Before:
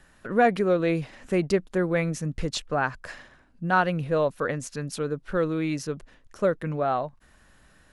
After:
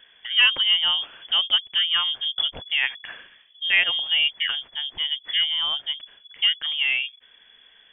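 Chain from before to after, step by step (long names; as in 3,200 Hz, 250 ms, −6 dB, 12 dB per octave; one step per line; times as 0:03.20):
voice inversion scrambler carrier 3,400 Hz
level +2 dB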